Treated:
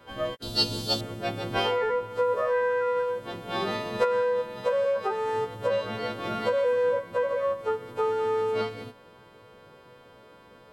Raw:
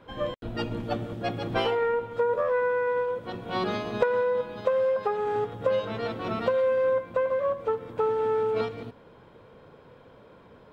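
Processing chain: frequency quantiser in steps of 2 st; 0.42–1.01 resonant high shelf 3000 Hz +12 dB, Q 3

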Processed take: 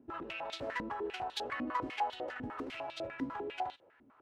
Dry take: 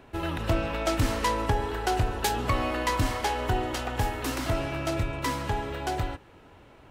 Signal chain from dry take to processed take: time stretch by phase-locked vocoder 0.61×; stepped band-pass 10 Hz 260–3700 Hz; gain +1 dB

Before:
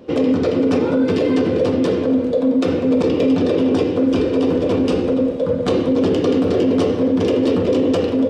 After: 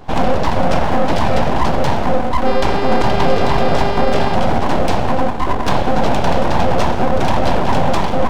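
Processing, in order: full-wave rectifier; 2.45–4.34 buzz 400 Hz, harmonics 13, -29 dBFS -6 dB/oct; gain +5 dB

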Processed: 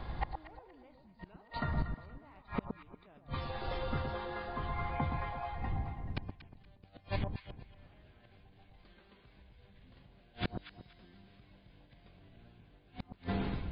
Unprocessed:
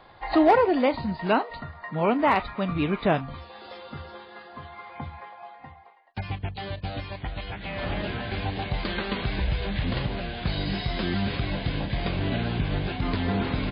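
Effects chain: ending faded out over 1.24 s; wind noise 82 Hz -33 dBFS; 3.5–5.12 high shelf 4600 Hz -8.5 dB; in parallel at +1.5 dB: negative-ratio compressor -25 dBFS, ratio -0.5; on the sum: flipped gate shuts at -15 dBFS, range -35 dB; on a send: echo with dull and thin repeats by turns 0.118 s, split 1100 Hz, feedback 51%, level -5.5 dB; on the sum: gain -6 dB

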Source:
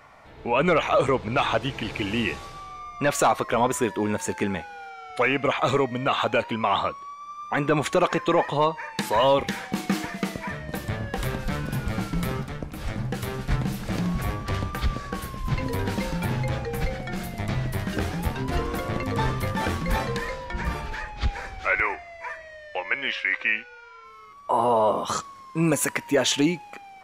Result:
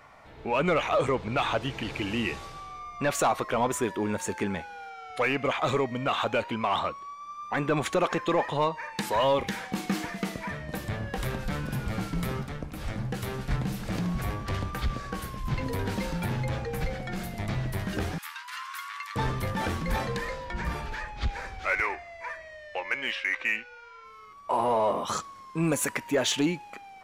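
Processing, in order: 18.18–19.16 steep high-pass 1000 Hz 72 dB/oct; in parallel at -6 dB: soft clip -27.5 dBFS, distortion -6 dB; on the sum: gain -5.5 dB

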